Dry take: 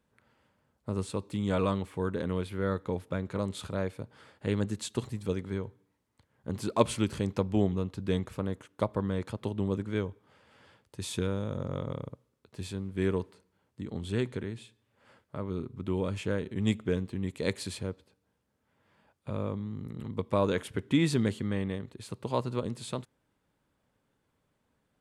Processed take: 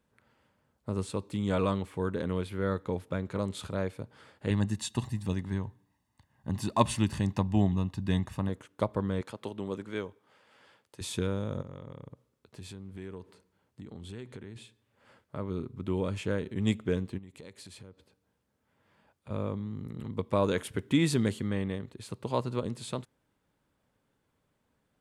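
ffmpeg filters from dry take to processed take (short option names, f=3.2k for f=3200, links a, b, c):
-filter_complex "[0:a]asettb=1/sr,asplit=3[a][b][c];[a]atrim=end=4.504[d];[b]atrim=start=4.5:end=8.49,asetpts=PTS-STARTPTS,afade=t=in:d=0.004:c=qsin,afade=t=out:st=3.986:d=0.004:c=qsin,aecho=1:1:1.1:0.65,atrim=end_sample=175959[e];[c]atrim=start=8.486[f];[d][e]acrossfade=d=0.004:c1=hsin:c2=qsin[g];[g][f]acrossfade=d=0.004:c1=qsin:c2=hsin,asettb=1/sr,asplit=3[h][i][j];[h]atrim=end=9.214[k];[i]atrim=start=9.21:end=11.01,asetpts=PTS-STARTPTS,afade=t=in:d=0.004:c=qsin,afade=t=out:st=1.796:d=0.004:c=qsin,highpass=f=390:p=1[l];[j]atrim=start=11.006[m];[k][l]acrossfade=d=0.004:c1=hsin:c2=qsin[n];[n][m]acrossfade=d=0.004:c1=qsin:c2=hsin,asettb=1/sr,asplit=3[o][p][q];[o]atrim=end=11.614[r];[p]atrim=start=11.61:end=14.56,asetpts=PTS-STARTPTS,afade=t=in:d=0.004:c=qsin,afade=t=out:st=2.946:d=0.004:c=qsin,acompressor=threshold=-42dB:ratio=3:attack=3.2:release=140:knee=1:detection=peak[s];[q]atrim=start=14.556[t];[r][s]acrossfade=d=0.004:c1=hsin:c2=qsin[u];[u][t]acrossfade=d=0.004:c1=qsin:c2=hsin,asplit=3[v][w][x];[v]afade=t=out:st=17.17:d=0.02[y];[w]acompressor=threshold=-46dB:ratio=5:attack=3.2:release=140:knee=1:detection=peak,afade=t=in:st=17.17:d=0.02,afade=t=out:st=19.29:d=0.02[z];[x]afade=t=in:st=19.29:d=0.02[aa];[y][z][aa]amix=inputs=3:normalize=0,asettb=1/sr,asplit=3[ab][ac][ad];[ab]atrim=end=20.434[ae];[ac]atrim=start=20.43:end=21.5,asetpts=PTS-STARTPTS,afade=t=in:d=0.004:c=qsin,afade=t=out:st=1.066:d=0.004:c=qsin,highshelf=f=8.4k:g=7[af];[ad]atrim=start=21.496[ag];[ae][af]acrossfade=d=0.004:c1=hsin:c2=qsin[ah];[ah][ag]acrossfade=d=0.004:c1=qsin:c2=hsin"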